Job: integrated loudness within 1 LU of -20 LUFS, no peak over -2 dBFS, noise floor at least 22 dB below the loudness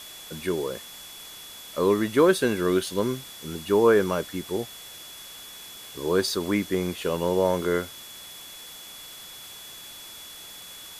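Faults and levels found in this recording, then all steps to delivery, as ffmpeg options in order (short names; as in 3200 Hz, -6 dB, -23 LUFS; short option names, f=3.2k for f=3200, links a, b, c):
steady tone 3400 Hz; tone level -44 dBFS; noise floor -43 dBFS; noise floor target -47 dBFS; loudness -25.0 LUFS; peak -7.5 dBFS; loudness target -20.0 LUFS
-> -af "bandreject=f=3.4k:w=30"
-af "afftdn=nr=6:nf=-43"
-af "volume=5dB"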